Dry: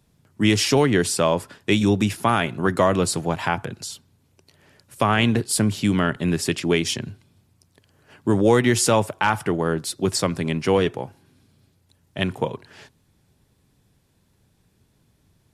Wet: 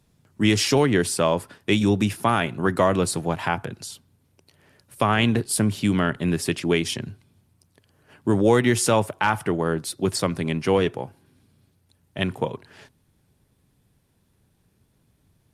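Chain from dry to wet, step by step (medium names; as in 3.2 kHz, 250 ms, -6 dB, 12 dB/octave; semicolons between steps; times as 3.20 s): trim -1 dB; Opus 48 kbps 48 kHz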